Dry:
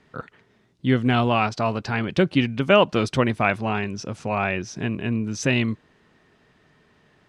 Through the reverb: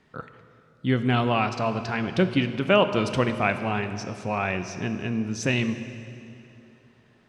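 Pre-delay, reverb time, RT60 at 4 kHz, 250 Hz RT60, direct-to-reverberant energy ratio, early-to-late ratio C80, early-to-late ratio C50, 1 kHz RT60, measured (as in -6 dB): 3 ms, 2.8 s, 2.4 s, 3.1 s, 9.0 dB, 11.0 dB, 10.0 dB, 2.7 s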